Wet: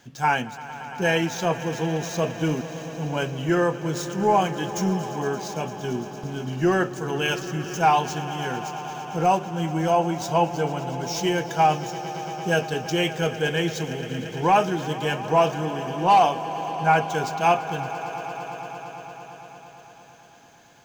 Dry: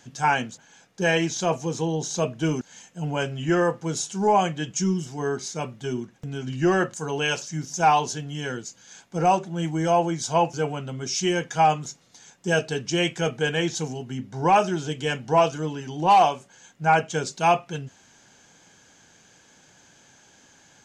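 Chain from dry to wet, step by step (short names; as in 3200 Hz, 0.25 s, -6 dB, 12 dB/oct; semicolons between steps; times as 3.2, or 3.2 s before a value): median filter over 5 samples; swelling echo 0.114 s, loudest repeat 5, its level -17.5 dB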